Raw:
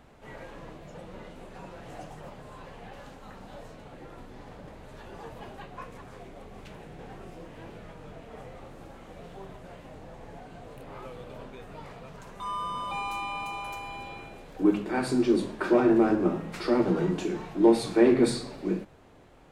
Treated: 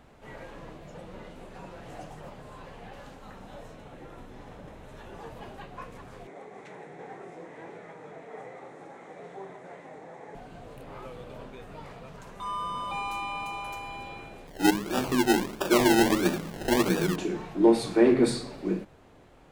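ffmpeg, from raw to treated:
ffmpeg -i in.wav -filter_complex "[0:a]asettb=1/sr,asplit=3[link_01][link_02][link_03];[link_01]atrim=end=3.334[link_04];[link_02]atrim=start=3.33:end=5.22,asetpts=PTS-STARTPTS,afade=type=in:duration=0.004:curve=qsin,afade=type=out:start_time=1.886:duration=0.004:curve=qsin,bandreject=frequency=4600:width=10[link_05];[link_03]atrim=start=5.216[link_06];[link_04][link_05]acrossfade=duration=0.004:curve1=hsin:curve2=qsin[link_07];[link_07][link_06]acrossfade=duration=0.004:curve1=qsin:curve2=hsin,asettb=1/sr,asplit=3[link_08][link_09][link_10];[link_08]atrim=end=6.274[link_11];[link_09]atrim=start=6.27:end=10.35,asetpts=PTS-STARTPTS,afade=type=in:duration=0.004:curve=qsin,afade=type=out:start_time=4.076:duration=0.004:curve=qsin,highpass=frequency=160:width=0.5412,highpass=frequency=160:width=1.3066,equalizer=frequency=220:width_type=q:width=4:gain=-7,equalizer=frequency=420:width_type=q:width=4:gain=5,equalizer=frequency=810:width_type=q:width=4:gain=5,equalizer=frequency=2000:width_type=q:width=4:gain=8,equalizer=frequency=2900:width_type=q:width=4:gain=-9,equalizer=frequency=4700:width_type=q:width=4:gain=-8,lowpass=frequency=9000:width=0.5412,lowpass=frequency=9000:width=1.3066[link_12];[link_10]atrim=start=10.346[link_13];[link_11][link_12]acrossfade=duration=0.004:curve1=hsin:curve2=qsin[link_14];[link_14][link_13]acrossfade=duration=0.004:curve1=qsin:curve2=hsin,asettb=1/sr,asplit=3[link_15][link_16][link_17];[link_15]atrim=end=14.474[link_18];[link_16]atrim=start=14.47:end=17.16,asetpts=PTS-STARTPTS,afade=type=in:duration=0.004:curve=qsin,afade=type=out:start_time=2.686:duration=0.004:curve=qsin,acrusher=samples=30:mix=1:aa=0.000001:lfo=1:lforange=18:lforate=1.5[link_19];[link_17]atrim=start=17.156[link_20];[link_18][link_19]acrossfade=duration=0.004:curve1=hsin:curve2=qsin[link_21];[link_21][link_20]acrossfade=duration=0.004:curve1=qsin:curve2=hsin" out.wav

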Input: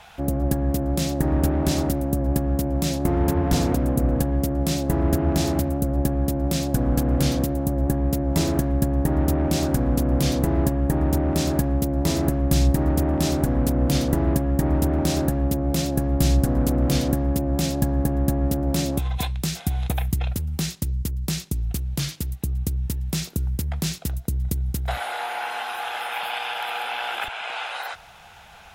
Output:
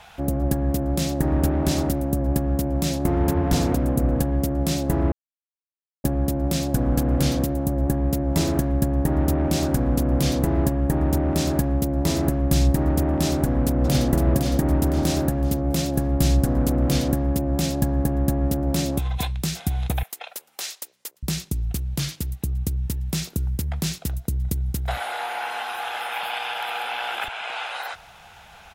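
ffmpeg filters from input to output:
ffmpeg -i in.wav -filter_complex "[0:a]asplit=2[link_01][link_02];[link_02]afade=type=in:start_time=13.33:duration=0.01,afade=type=out:start_time=14.09:duration=0.01,aecho=0:1:510|1020|1530|2040|2550:0.562341|0.224937|0.0899746|0.0359898|0.0143959[link_03];[link_01][link_03]amix=inputs=2:normalize=0,asettb=1/sr,asplit=3[link_04][link_05][link_06];[link_04]atrim=end=20.034[link_07];[link_05]atrim=start=20.03:end=21.23,asetpts=PTS-STARTPTS,afade=type=in:duration=0.004:curve=qsin,afade=type=out:start_time=1.196:duration=0.004:curve=qsin,highpass=frequency=540:width=0.5412,highpass=frequency=540:width=1.3066[link_08];[link_06]atrim=start=21.226[link_09];[link_07][link_08]acrossfade=duration=0.004:curve1=hsin:curve2=qsin[link_10];[link_10][link_09]acrossfade=duration=0.004:curve1=qsin:curve2=hsin,asplit=3[link_11][link_12][link_13];[link_11]atrim=end=5.12,asetpts=PTS-STARTPTS,afade=type=out:start_time=5.116:duration=0.004:curve=hsin[link_14];[link_12]atrim=start=5.12:end=6.04,asetpts=PTS-STARTPTS,volume=0[link_15];[link_13]atrim=start=6.04,asetpts=PTS-STARTPTS,afade=type=in:duration=0.004:curve=hsin[link_16];[link_14][link_15][link_16]concat=n=3:v=0:a=1" out.wav

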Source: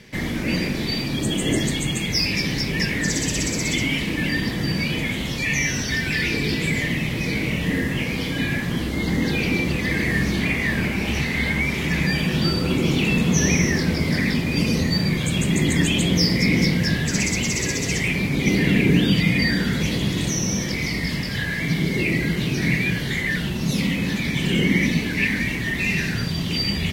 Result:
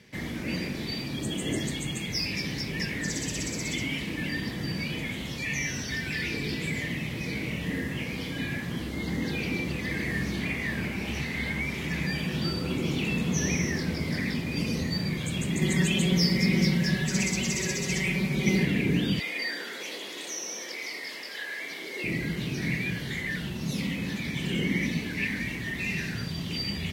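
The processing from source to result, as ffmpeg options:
ffmpeg -i in.wav -filter_complex "[0:a]asettb=1/sr,asplit=3[link_01][link_02][link_03];[link_01]atrim=end=15.614[link_04];[link_02]atrim=start=15.61:end=18.65,asetpts=PTS-STARTPTS,afade=type=in:duration=0.004:curve=qsin,afade=type=out:start_time=3.036:duration=0.004:curve=qsin,aecho=1:1:5.3:1,atrim=end_sample=134064[link_05];[link_03]atrim=start=18.646[link_06];[link_04][link_05]acrossfade=duration=0.004:curve1=hsin:curve2=qsin[link_07];[link_07][link_06]acrossfade=duration=0.004:curve1=qsin:curve2=hsin,asettb=1/sr,asplit=3[link_08][link_09][link_10];[link_08]atrim=end=19.194[link_11];[link_09]atrim=start=19.19:end=22.04,asetpts=PTS-STARTPTS,afade=type=in:duration=0.004:curve=qsin,afade=type=out:start_time=2.846:duration=0.004:curve=qsin,highpass=frequency=390:width=0.5412,highpass=frequency=390:width=1.3066[link_12];[link_10]atrim=start=22.036[link_13];[link_11][link_12]acrossfade=duration=0.004:curve1=hsin:curve2=qsin[link_14];[link_14][link_13]acrossfade=duration=0.004:curve1=qsin:curve2=hsin,highpass=50,volume=-8.5dB" out.wav

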